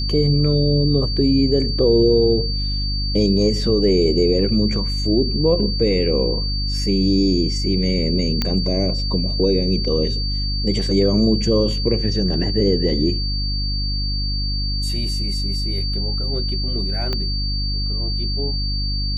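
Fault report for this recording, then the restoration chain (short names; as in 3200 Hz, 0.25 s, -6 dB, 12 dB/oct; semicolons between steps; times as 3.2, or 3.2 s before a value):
hum 50 Hz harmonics 6 -23 dBFS
tone 4600 Hz -25 dBFS
8.42 pop -6 dBFS
17.13 pop -11 dBFS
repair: de-click; notch 4600 Hz, Q 30; de-hum 50 Hz, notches 6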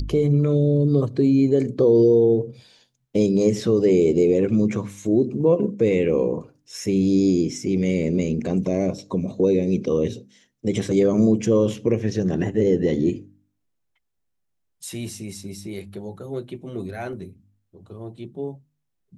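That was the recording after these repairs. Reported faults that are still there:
17.13 pop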